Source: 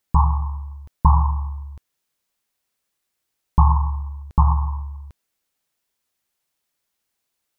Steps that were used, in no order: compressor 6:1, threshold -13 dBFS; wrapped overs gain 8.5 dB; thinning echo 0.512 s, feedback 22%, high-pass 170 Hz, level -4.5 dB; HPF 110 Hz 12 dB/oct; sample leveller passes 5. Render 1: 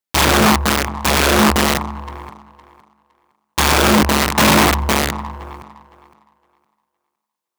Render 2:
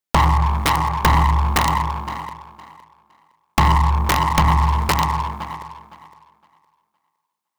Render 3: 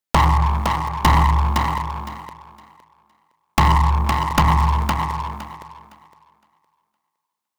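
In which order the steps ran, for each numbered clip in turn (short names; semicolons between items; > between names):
compressor > sample leveller > thinning echo > wrapped overs > HPF; HPF > sample leveller > thinning echo > compressor > wrapped overs; HPF > sample leveller > compressor > wrapped overs > thinning echo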